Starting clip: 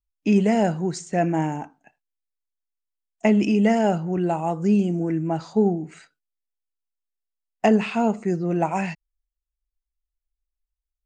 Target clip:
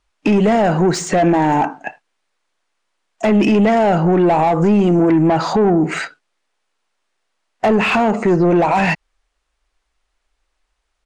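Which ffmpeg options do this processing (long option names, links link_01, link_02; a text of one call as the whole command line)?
ffmpeg -i in.wav -filter_complex "[0:a]acompressor=threshold=-30dB:ratio=4,aresample=22050,aresample=44100,acontrast=81,asplit=2[link_01][link_02];[link_02]highpass=frequency=720:poles=1,volume=22dB,asoftclip=type=tanh:threshold=-11.5dB[link_03];[link_01][link_03]amix=inputs=2:normalize=0,lowpass=frequency=1300:poles=1,volume=-6dB,alimiter=level_in=16dB:limit=-1dB:release=50:level=0:latency=1,volume=-6.5dB" out.wav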